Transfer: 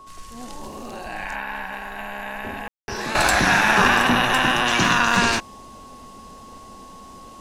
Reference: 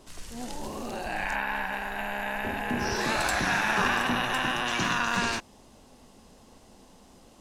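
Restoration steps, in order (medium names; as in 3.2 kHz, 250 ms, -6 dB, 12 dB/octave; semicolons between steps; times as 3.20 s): band-stop 1.1 kHz, Q 30; room tone fill 2.68–2.88 s; gain correction -9 dB, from 3.15 s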